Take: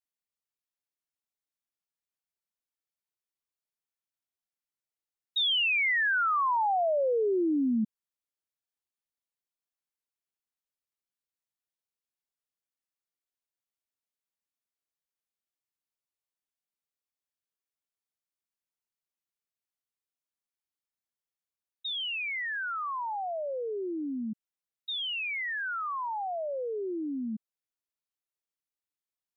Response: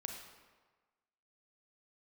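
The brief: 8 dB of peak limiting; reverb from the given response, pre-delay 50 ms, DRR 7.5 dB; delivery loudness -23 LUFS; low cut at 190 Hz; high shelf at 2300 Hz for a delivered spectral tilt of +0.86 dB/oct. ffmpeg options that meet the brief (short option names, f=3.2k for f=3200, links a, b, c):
-filter_complex "[0:a]highpass=190,highshelf=f=2.3k:g=7.5,alimiter=level_in=2dB:limit=-24dB:level=0:latency=1,volume=-2dB,asplit=2[a][b];[1:a]atrim=start_sample=2205,adelay=50[c];[b][c]afir=irnorm=-1:irlink=0,volume=-6dB[d];[a][d]amix=inputs=2:normalize=0,volume=6.5dB"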